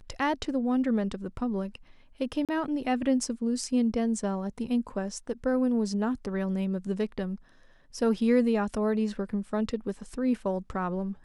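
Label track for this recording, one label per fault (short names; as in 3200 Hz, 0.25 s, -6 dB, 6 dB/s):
2.450000	2.490000	gap 37 ms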